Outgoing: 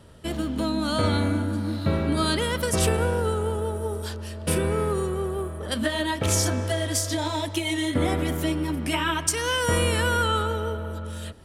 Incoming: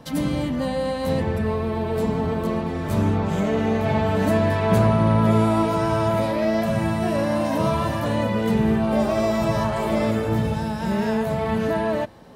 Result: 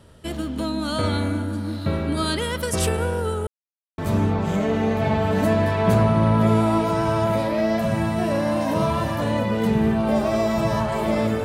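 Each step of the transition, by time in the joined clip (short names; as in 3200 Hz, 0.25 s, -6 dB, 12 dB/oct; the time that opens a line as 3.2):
outgoing
3.47–3.98 mute
3.98 switch to incoming from 2.82 s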